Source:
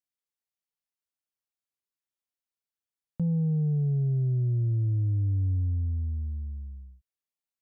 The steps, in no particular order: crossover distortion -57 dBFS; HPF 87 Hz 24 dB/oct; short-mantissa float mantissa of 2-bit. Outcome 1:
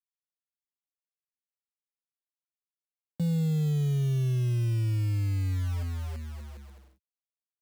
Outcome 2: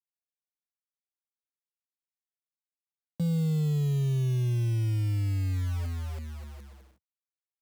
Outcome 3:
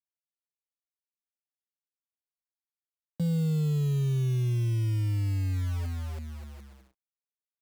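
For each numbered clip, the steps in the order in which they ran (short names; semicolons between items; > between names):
crossover distortion > short-mantissa float > HPF; short-mantissa float > crossover distortion > HPF; short-mantissa float > HPF > crossover distortion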